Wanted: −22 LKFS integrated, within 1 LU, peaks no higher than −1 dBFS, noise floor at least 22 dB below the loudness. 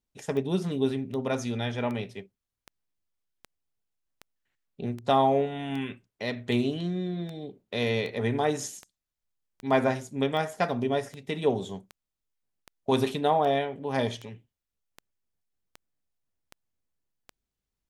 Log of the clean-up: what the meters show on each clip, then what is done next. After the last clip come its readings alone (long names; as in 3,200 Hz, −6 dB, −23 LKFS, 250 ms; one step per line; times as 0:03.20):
number of clicks 23; integrated loudness −28.5 LKFS; sample peak −10.0 dBFS; target loudness −22.0 LKFS
→ click removal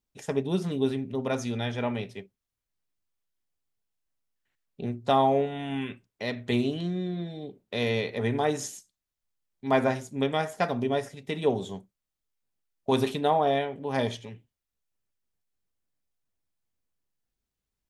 number of clicks 0; integrated loudness −28.5 LKFS; sample peak −10.0 dBFS; target loudness −22.0 LKFS
→ level +6.5 dB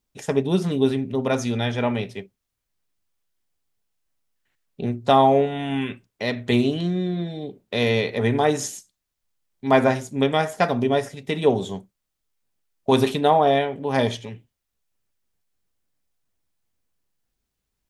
integrated loudness −22.0 LKFS; sample peak −3.5 dBFS; background noise floor −80 dBFS